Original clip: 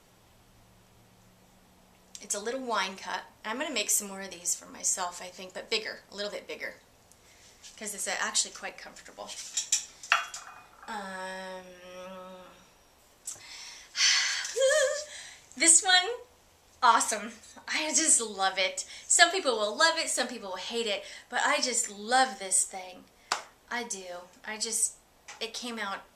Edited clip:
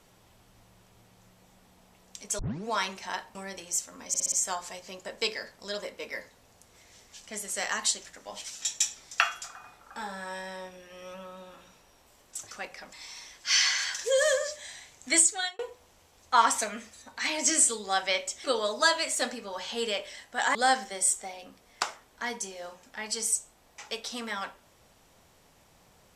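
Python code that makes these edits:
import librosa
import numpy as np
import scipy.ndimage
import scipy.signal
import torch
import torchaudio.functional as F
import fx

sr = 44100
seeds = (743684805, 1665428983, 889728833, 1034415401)

y = fx.edit(x, sr, fx.tape_start(start_s=2.39, length_s=0.29),
    fx.cut(start_s=3.35, length_s=0.74),
    fx.stutter(start_s=4.82, slice_s=0.06, count=5),
    fx.move(start_s=8.55, length_s=0.42, to_s=13.43),
    fx.fade_out_span(start_s=15.61, length_s=0.48),
    fx.cut(start_s=18.94, length_s=0.48),
    fx.cut(start_s=21.53, length_s=0.52), tone=tone)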